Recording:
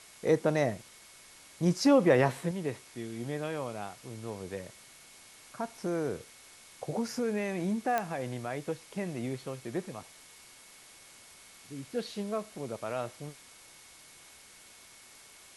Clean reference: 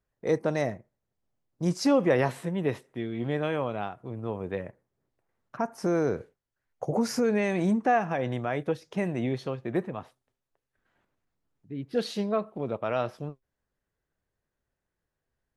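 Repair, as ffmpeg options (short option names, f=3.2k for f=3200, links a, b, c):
-af "adeclick=t=4,bandreject=f=2.2k:w=30,afwtdn=0.0025,asetnsamples=n=441:p=0,asendcmd='2.51 volume volume 6.5dB',volume=0dB"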